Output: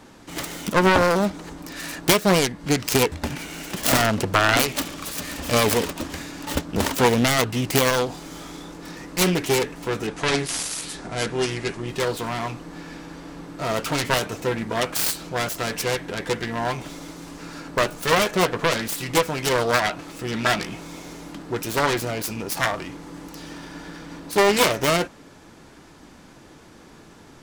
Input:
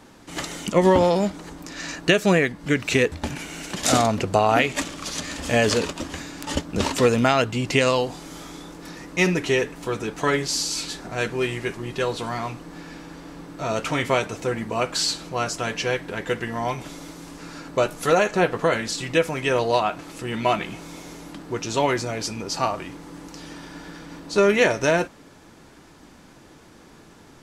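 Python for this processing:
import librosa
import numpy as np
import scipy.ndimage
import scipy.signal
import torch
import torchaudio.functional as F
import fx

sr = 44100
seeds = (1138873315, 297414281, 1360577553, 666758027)

y = fx.self_delay(x, sr, depth_ms=0.88)
y = fx.steep_lowpass(y, sr, hz=11000.0, slope=96, at=(10.07, 11.88))
y = F.gain(torch.from_numpy(y), 1.5).numpy()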